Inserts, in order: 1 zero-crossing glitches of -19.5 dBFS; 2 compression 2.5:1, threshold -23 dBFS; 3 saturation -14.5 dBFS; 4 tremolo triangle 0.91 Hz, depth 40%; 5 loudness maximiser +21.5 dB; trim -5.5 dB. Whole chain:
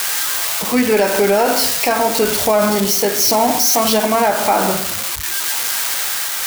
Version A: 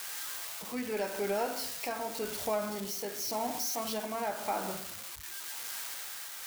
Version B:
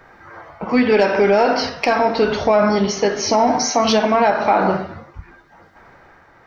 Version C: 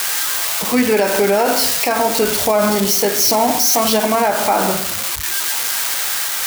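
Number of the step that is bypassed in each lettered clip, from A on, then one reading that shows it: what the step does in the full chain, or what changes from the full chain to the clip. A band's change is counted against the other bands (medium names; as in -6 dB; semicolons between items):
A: 5, crest factor change +4.5 dB; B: 1, distortion -6 dB; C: 3, distortion -25 dB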